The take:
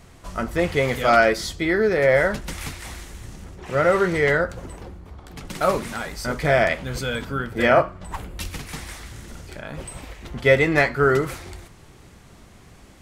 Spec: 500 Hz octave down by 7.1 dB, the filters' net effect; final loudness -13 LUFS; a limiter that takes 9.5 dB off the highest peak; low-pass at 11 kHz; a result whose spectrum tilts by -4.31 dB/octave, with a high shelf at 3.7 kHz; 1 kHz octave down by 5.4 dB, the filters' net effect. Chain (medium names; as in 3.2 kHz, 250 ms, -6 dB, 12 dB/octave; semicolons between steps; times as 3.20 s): low-pass 11 kHz; peaking EQ 500 Hz -7 dB; peaking EQ 1 kHz -6.5 dB; treble shelf 3.7 kHz +3.5 dB; trim +15.5 dB; peak limiter -1 dBFS